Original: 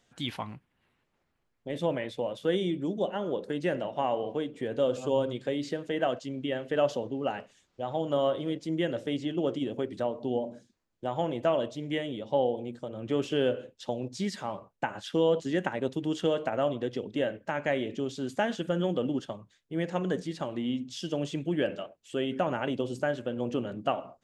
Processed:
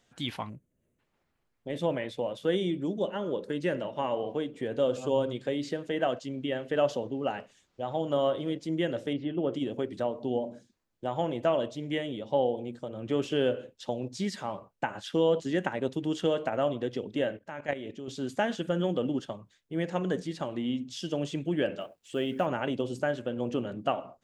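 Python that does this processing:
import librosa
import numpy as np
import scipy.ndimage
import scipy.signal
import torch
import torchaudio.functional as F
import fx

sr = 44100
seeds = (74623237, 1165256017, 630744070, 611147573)

y = fx.spec_box(x, sr, start_s=0.49, length_s=0.5, low_hz=670.0, high_hz=5900.0, gain_db=-17)
y = fx.notch(y, sr, hz=730.0, q=5.5, at=(2.99, 4.17))
y = fx.air_absorb(y, sr, metres=320.0, at=(9.13, 9.53))
y = fx.level_steps(y, sr, step_db=13, at=(17.37, 18.08))
y = fx.quant_companded(y, sr, bits=8, at=(21.8, 22.46))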